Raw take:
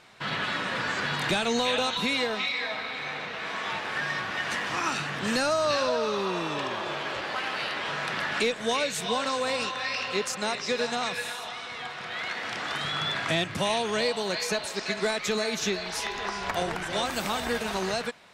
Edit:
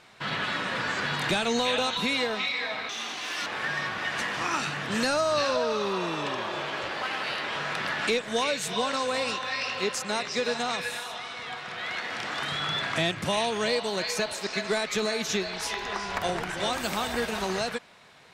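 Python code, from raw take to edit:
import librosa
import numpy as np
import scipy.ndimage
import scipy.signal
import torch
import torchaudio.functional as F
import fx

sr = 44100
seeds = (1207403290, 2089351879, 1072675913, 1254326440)

y = fx.edit(x, sr, fx.speed_span(start_s=2.89, length_s=0.9, speed=1.57), tone=tone)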